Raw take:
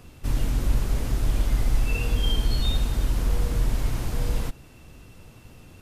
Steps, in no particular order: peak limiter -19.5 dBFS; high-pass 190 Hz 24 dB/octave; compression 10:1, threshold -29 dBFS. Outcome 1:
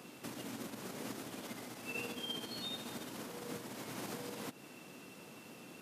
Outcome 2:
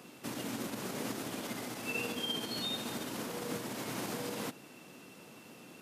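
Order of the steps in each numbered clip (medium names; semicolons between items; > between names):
peak limiter > compression > high-pass; peak limiter > high-pass > compression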